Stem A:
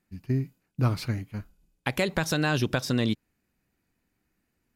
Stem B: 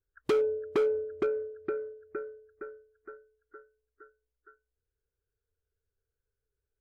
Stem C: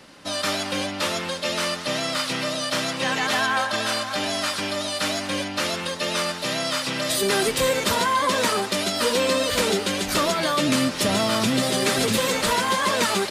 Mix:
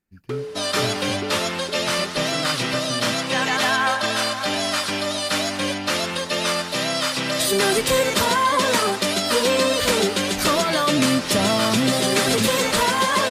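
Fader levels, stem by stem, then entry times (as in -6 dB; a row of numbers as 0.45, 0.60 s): -6.5, -3.5, +2.5 dB; 0.00, 0.00, 0.30 s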